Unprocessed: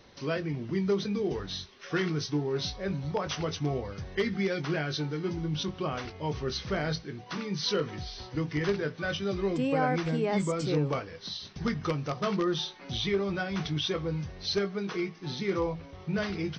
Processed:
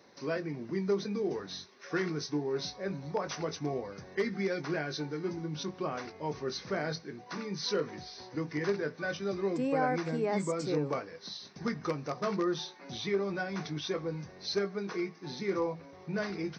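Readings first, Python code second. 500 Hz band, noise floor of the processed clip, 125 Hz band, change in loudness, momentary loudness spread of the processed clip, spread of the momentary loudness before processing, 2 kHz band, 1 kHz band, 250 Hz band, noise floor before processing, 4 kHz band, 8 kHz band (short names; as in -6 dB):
-2.0 dB, -53 dBFS, -7.0 dB, -3.5 dB, 8 LU, 6 LU, -3.0 dB, -2.0 dB, -3.5 dB, -48 dBFS, -6.0 dB, -2.0 dB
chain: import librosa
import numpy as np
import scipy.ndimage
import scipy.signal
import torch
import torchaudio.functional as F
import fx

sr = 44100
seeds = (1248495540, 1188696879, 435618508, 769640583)

y = scipy.signal.sosfilt(scipy.signal.butter(2, 200.0, 'highpass', fs=sr, output='sos'), x)
y = fx.peak_eq(y, sr, hz=3100.0, db=-11.5, octaves=0.46)
y = fx.notch(y, sr, hz=1300.0, q=23.0)
y = y * librosa.db_to_amplitude(-1.5)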